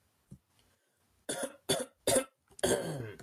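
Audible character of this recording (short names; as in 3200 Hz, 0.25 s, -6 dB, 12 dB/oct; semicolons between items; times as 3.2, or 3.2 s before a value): chopped level 2 Hz, depth 60%, duty 50%; Vorbis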